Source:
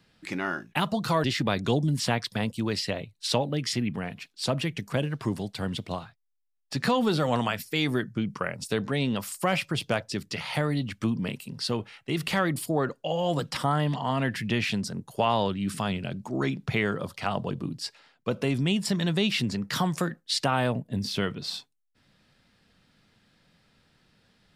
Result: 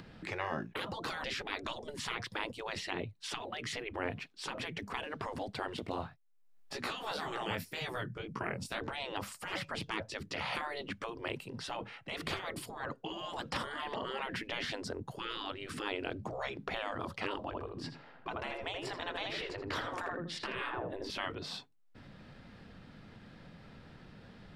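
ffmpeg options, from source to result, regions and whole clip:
ffmpeg -i in.wav -filter_complex "[0:a]asettb=1/sr,asplit=3[link_01][link_02][link_03];[link_01]atrim=end=5.764[link_04];[link_02]atrim=start=5.76:end=8.81,asetpts=PTS-STARTPTS,afade=type=in:duration=0.004:curve=qsin,afade=type=out:start_time=3.046:duration=0.004:curve=qsin,highshelf=frequency=9400:gain=12,flanger=delay=16:depth=7.4:speed=1.9[link_05];[link_03]atrim=start=8.806[link_06];[link_04][link_05]acrossfade=duration=0.004:curve1=hsin:curve2=qsin[link_07];[link_07][link_06]acrossfade=duration=0.004:curve1=qsin:curve2=hsin,asettb=1/sr,asplit=3[link_08][link_09][link_10];[link_08]atrim=end=17.454[link_11];[link_09]atrim=start=17.45:end=21.1,asetpts=PTS-STARTPTS,afade=type=in:duration=0.004:curve=qsin,afade=type=out:start_time=3.646:duration=0.004:curve=qsin,highshelf=frequency=3800:gain=-9.5,asplit=2[link_12][link_13];[link_13]adelay=81,lowpass=frequency=2300:poles=1,volume=-5.5dB,asplit=2[link_14][link_15];[link_15]adelay=81,lowpass=frequency=2300:poles=1,volume=0.3,asplit=2[link_16][link_17];[link_17]adelay=81,lowpass=frequency=2300:poles=1,volume=0.3,asplit=2[link_18][link_19];[link_19]adelay=81,lowpass=frequency=2300:poles=1,volume=0.3[link_20];[link_12][link_14][link_16][link_18][link_20]amix=inputs=5:normalize=0,atrim=end_sample=160965[link_21];[link_10]atrim=start=21.096[link_22];[link_11][link_21]acrossfade=duration=0.004:curve1=hsin:curve2=qsin[link_23];[link_23][link_22]acrossfade=duration=0.004:curve1=qsin:curve2=hsin,afftfilt=real='re*lt(hypot(re,im),0.0708)':imag='im*lt(hypot(re,im),0.0708)':win_size=1024:overlap=0.75,lowpass=frequency=1200:poles=1,acompressor=mode=upward:threshold=-49dB:ratio=2.5,volume=5dB" out.wav

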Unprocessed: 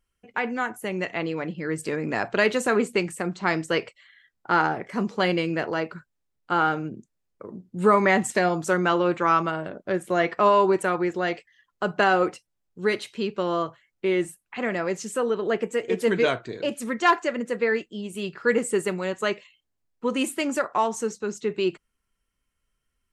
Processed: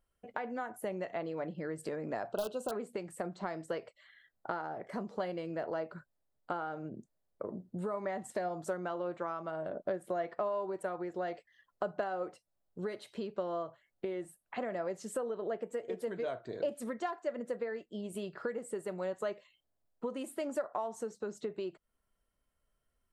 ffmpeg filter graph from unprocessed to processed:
ffmpeg -i in.wav -filter_complex "[0:a]asettb=1/sr,asplit=3[link_01][link_02][link_03];[link_01]atrim=end=2.324[link_04];[link_02]atrim=start=2.32:end=2.72,asetpts=PTS-STARTPTS,afade=type=in:duration=0.004:curve=qsin,afade=type=out:start_time=0.396:duration=0.004:curve=qsin,aeval=exprs='(mod(3.76*val(0)+1,2)-1)/3.76':channel_layout=same,asuperstop=centerf=2000:order=20:qfactor=2[link_05];[link_03]atrim=start=2.716[link_06];[link_04][link_05]acrossfade=duration=0.004:curve1=hsin:curve2=qsin[link_07];[link_07][link_06]acrossfade=duration=0.004:curve1=qsin:curve2=hsin,acompressor=threshold=-34dB:ratio=12,equalizer=frequency=630:width_type=o:width=0.67:gain=10,equalizer=frequency=2500:width_type=o:width=0.67:gain=-7,equalizer=frequency=6300:width_type=o:width=0.67:gain=-6,volume=-3dB" out.wav

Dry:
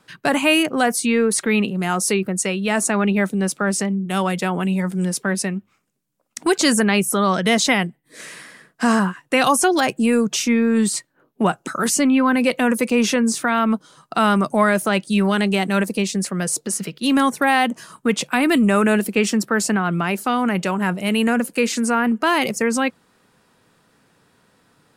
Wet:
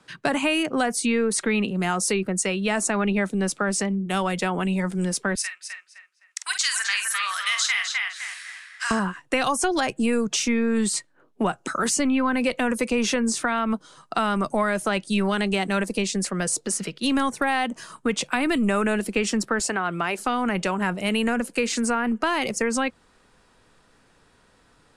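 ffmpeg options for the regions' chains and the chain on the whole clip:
ffmpeg -i in.wav -filter_complex "[0:a]asettb=1/sr,asplit=3[link_01][link_02][link_03];[link_01]atrim=end=5.354[link_04];[link_02]atrim=start=5.35:end=8.91,asetpts=PTS-STARTPTS,afade=type=in:duration=0.004:curve=qsin,afade=type=out:start_time=3.556:duration=0.004:curve=qsin,highpass=frequency=1400:width=0.5412,highpass=frequency=1400:width=1.3066,asplit=2[link_05][link_06];[link_06]adelay=47,volume=-8dB[link_07];[link_05][link_07]amix=inputs=2:normalize=0,atrim=end_sample=156996,asplit=2[link_08][link_09];[link_09]adelay=257,lowpass=frequency=2900:poles=1,volume=-3dB,asplit=2[link_10][link_11];[link_11]adelay=257,lowpass=frequency=2900:poles=1,volume=0.37,asplit=2[link_12][link_13];[link_13]adelay=257,lowpass=frequency=2900:poles=1,volume=0.37,asplit=2[link_14][link_15];[link_15]adelay=257,lowpass=frequency=2900:poles=1,volume=0.37,asplit=2[link_16][link_17];[link_17]adelay=257,lowpass=frequency=2900:poles=1,volume=0.37[link_18];[link_08][link_10][link_12][link_14][link_16][link_18]amix=inputs=6:normalize=0,atrim=end_sample=156996[link_19];[link_03]atrim=start=8.906[link_20];[link_04][link_19]acrossfade=duration=0.004:curve1=hsin:curve2=qsin[link_21];[link_21][link_20]acrossfade=duration=0.004:curve1=qsin:curve2=hsin,asettb=1/sr,asplit=3[link_22][link_23][link_24];[link_22]atrim=end=19.594[link_25];[link_23]atrim=start=19.59:end=20.19,asetpts=PTS-STARTPTS,afade=type=in:duration=0.004:curve=qsin,afade=type=out:start_time=0.596:duration=0.004:curve=qsin,highpass=70,equalizer=frequency=210:width_type=o:width=0.72:gain=-9[link_26];[link_24]atrim=start=20.186[link_27];[link_25][link_26]acrossfade=duration=0.004:curve1=hsin:curve2=qsin[link_28];[link_28][link_27]acrossfade=duration=0.004:curve1=qsin:curve2=hsin,lowpass=frequency=10000:width=0.5412,lowpass=frequency=10000:width=1.3066,asubboost=boost=8:cutoff=50,acrossover=split=140[link_29][link_30];[link_30]acompressor=threshold=-21dB:ratio=3[link_31];[link_29][link_31]amix=inputs=2:normalize=0" out.wav

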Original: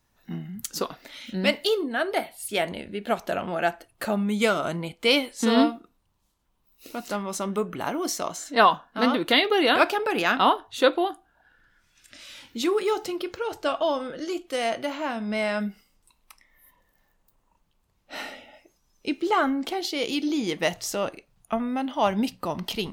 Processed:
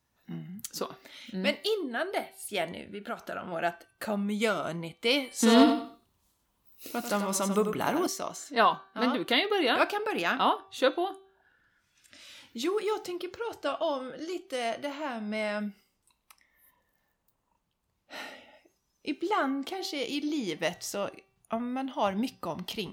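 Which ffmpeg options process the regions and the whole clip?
ffmpeg -i in.wav -filter_complex "[0:a]asettb=1/sr,asplit=3[link_01][link_02][link_03];[link_01]atrim=end=2.914[link_04];[link_02]atrim=start=2.91:end=3.52,asetpts=PTS-STARTPTS,afade=type=in:duration=0.004:curve=qsin,afade=type=out:start_time=0.606:duration=0.004:curve=qsin,equalizer=frequency=1400:width=6:gain=11.5,acompressor=threshold=-30dB:ratio=2:attack=3.2:release=140:knee=1:detection=peak[link_05];[link_03]atrim=start=3.516[link_06];[link_04][link_05]acrossfade=duration=0.004:curve1=hsin:curve2=qsin[link_07];[link_07][link_06]acrossfade=duration=0.004:curve1=qsin:curve2=hsin,asettb=1/sr,asplit=3[link_08][link_09][link_10];[link_08]atrim=end=5.314[link_11];[link_09]atrim=start=5.31:end=8.07,asetpts=PTS-STARTPTS,afade=type=in:duration=0.004:curve=qsin,afade=type=out:start_time=2.756:duration=0.004:curve=qsin,highshelf=frequency=7700:gain=6,acontrast=42,aecho=1:1:93|186|279:0.376|0.0864|0.0199,atrim=end_sample=121716[link_12];[link_10]atrim=start=8.066[link_13];[link_11][link_12]acrossfade=duration=0.004:curve1=hsin:curve2=qsin[link_14];[link_14][link_13]acrossfade=duration=0.004:curve1=qsin:curve2=hsin,highpass=52,bandreject=frequency=386.1:width_type=h:width=4,bandreject=frequency=772.2:width_type=h:width=4,bandreject=frequency=1158.3:width_type=h:width=4,bandreject=frequency=1544.4:width_type=h:width=4,bandreject=frequency=1930.5:width_type=h:width=4,bandreject=frequency=2316.6:width_type=h:width=4,bandreject=frequency=2702.7:width_type=h:width=4,bandreject=frequency=3088.8:width_type=h:width=4,bandreject=frequency=3474.9:width_type=h:width=4,bandreject=frequency=3861:width_type=h:width=4,bandreject=frequency=4247.1:width_type=h:width=4,bandreject=frequency=4633.2:width_type=h:width=4,bandreject=frequency=5019.3:width_type=h:width=4,bandreject=frequency=5405.4:width_type=h:width=4,bandreject=frequency=5791.5:width_type=h:width=4,bandreject=frequency=6177.6:width_type=h:width=4,volume=-5.5dB" out.wav

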